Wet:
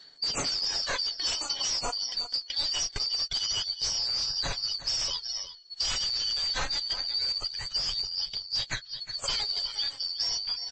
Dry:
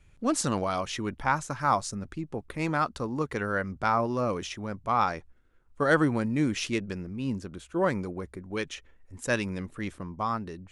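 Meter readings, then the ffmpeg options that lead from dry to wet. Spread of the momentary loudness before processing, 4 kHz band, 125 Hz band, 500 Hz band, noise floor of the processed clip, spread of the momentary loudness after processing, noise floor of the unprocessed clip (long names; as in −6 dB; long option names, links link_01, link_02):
11 LU, +17.0 dB, −14.0 dB, −15.0 dB, −49 dBFS, 4 LU, −59 dBFS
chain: -filter_complex "[0:a]afftfilt=real='real(if(lt(b,272),68*(eq(floor(b/68),0)*3+eq(floor(b/68),1)*2+eq(floor(b/68),2)*1+eq(floor(b/68),3)*0)+mod(b,68),b),0)':imag='imag(if(lt(b,272),68*(eq(floor(b/68),0)*3+eq(floor(b/68),1)*2+eq(floor(b/68),2)*1+eq(floor(b/68),3)*0)+mod(b,68),b),0)':win_size=2048:overlap=0.75,aphaser=in_gain=1:out_gain=1:delay=4.2:decay=0.58:speed=0.24:type=sinusoidal,acrossover=split=8400[link_01][link_02];[link_02]acompressor=threshold=-48dB:ratio=4:attack=1:release=60[link_03];[link_01][link_03]amix=inputs=2:normalize=0,aecho=1:1:7.1:0.4,aecho=1:1:360:0.133,asplit=2[link_04][link_05];[link_05]aeval=exprs='(mod(11.2*val(0)+1,2)-1)/11.2':channel_layout=same,volume=-5dB[link_06];[link_04][link_06]amix=inputs=2:normalize=0,acrusher=bits=8:mode=log:mix=0:aa=0.000001,equalizer=frequency=480:width=0.35:gain=11,aeval=exprs='0.126*(abs(mod(val(0)/0.126+3,4)-2)-1)':channel_layout=same,asubboost=boost=9.5:cutoff=85,acompressor=threshold=-26dB:ratio=16" -ar 22050 -c:a libmp3lame -b:a 32k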